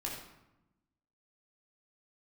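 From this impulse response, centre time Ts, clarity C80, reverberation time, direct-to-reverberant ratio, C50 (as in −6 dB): 45 ms, 5.5 dB, 0.90 s, −3.0 dB, 3.0 dB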